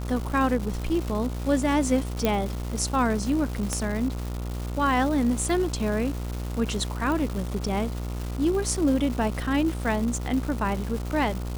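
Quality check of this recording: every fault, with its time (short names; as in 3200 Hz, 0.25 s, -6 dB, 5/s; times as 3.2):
buzz 60 Hz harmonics 24 -31 dBFS
crackle 480/s -31 dBFS
2.25 pop -9 dBFS
3.73 pop -12 dBFS
7.12 pop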